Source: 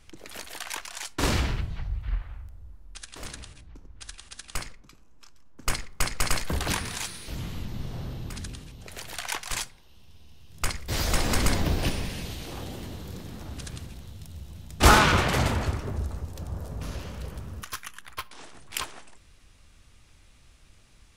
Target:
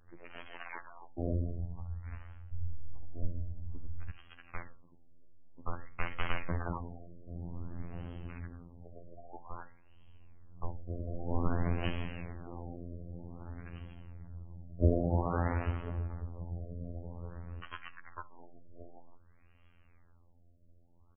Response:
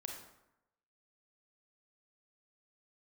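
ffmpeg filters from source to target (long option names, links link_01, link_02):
-filter_complex "[0:a]asettb=1/sr,asplit=3[link_01][link_02][link_03];[link_01]atrim=end=2.534[link_04];[link_02]atrim=start=2.53:end=4.1,asetpts=PTS-STARTPTS,afade=type=in:duration=0.004:curve=qsin,afade=type=out:start_time=1.566:duration=0.004:curve=qsin,aemphasis=mode=reproduction:type=riaa[link_05];[link_03]atrim=start=4.096[link_06];[link_04][link_05]acrossfade=duration=0.004:curve1=hsin:curve2=qsin[link_07];[link_07][link_06]acrossfade=duration=0.004:curve1=qsin:curve2=hsin,asettb=1/sr,asplit=3[link_08][link_09][link_10];[link_08]atrim=end=10.804[link_11];[link_09]atrim=start=10.8:end=11.28,asetpts=PTS-STARTPTS,afade=type=in:duration=0.004:curve=qsin,afade=type=out:start_time=0.476:duration=0.004:curve=qsin,acompressor=threshold=-27dB:ratio=2.5[link_12];[link_10]atrim=start=11.276[link_13];[link_11][link_12]acrossfade=duration=0.004:curve1=hsin:curve2=qsin[link_14];[link_14][link_13]acrossfade=duration=0.004:curve1=qsin:curve2=hsin,afftfilt=real='hypot(re,im)*cos(PI*b)':imag='0':win_size=2048:overlap=0.75,asplit=2[link_15][link_16];[link_16]adelay=66,lowpass=frequency=2800:poles=1,volume=-19dB,asplit=2[link_17][link_18];[link_18]adelay=66,lowpass=frequency=2800:poles=1,volume=0.3,asplit=2[link_19][link_20];[link_20]adelay=66,lowpass=frequency=2800:poles=1,volume=0.3[link_21];[link_17][link_19][link_21]amix=inputs=3:normalize=0[link_22];[link_15][link_22]amix=inputs=2:normalize=0,afftfilt=real='re*lt(b*sr/1024,680*pow(3300/680,0.5+0.5*sin(2*PI*0.52*pts/sr)))':imag='im*lt(b*sr/1024,680*pow(3300/680,0.5+0.5*sin(2*PI*0.52*pts/sr)))':win_size=1024:overlap=0.75,volume=-3dB"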